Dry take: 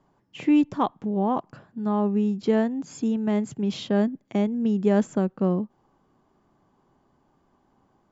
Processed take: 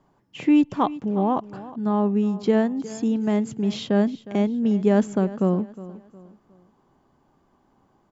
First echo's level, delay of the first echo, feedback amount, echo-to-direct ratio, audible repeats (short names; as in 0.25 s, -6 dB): -17.0 dB, 0.361 s, 36%, -16.5 dB, 3